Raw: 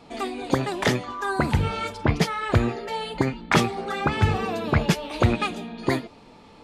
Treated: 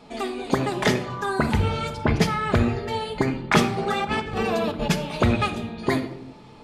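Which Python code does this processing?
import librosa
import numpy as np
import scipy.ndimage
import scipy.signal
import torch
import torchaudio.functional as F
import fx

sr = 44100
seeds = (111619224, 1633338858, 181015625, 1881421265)

y = fx.over_compress(x, sr, threshold_db=-27.0, ratio=-0.5, at=(3.76, 4.89), fade=0.02)
y = fx.room_shoebox(y, sr, seeds[0], volume_m3=2800.0, walls='furnished', distance_m=1.4)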